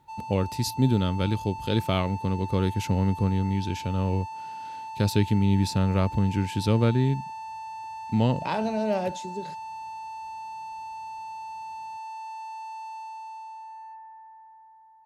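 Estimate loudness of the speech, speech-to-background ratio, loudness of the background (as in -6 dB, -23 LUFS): -26.0 LUFS, 12.0 dB, -38.0 LUFS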